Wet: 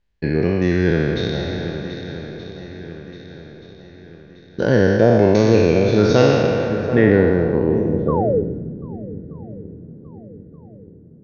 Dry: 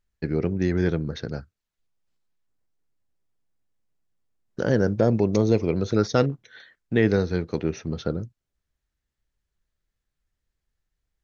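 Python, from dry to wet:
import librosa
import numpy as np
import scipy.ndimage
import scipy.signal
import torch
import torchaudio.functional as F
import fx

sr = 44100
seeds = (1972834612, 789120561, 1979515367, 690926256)

y = fx.spec_trails(x, sr, decay_s=2.59)
y = fx.notch(y, sr, hz=1300.0, q=5.7)
y = fx.spec_paint(y, sr, seeds[0], shape='fall', start_s=8.08, length_s=0.33, low_hz=400.0, high_hz=1200.0, level_db=-18.0)
y = fx.echo_swing(y, sr, ms=1227, ratio=1.5, feedback_pct=42, wet_db=-11)
y = fx.filter_sweep_lowpass(y, sr, from_hz=4000.0, to_hz=240.0, start_s=6.32, end_s=8.76, q=0.86)
y = y * 10.0 ** (4.0 / 20.0)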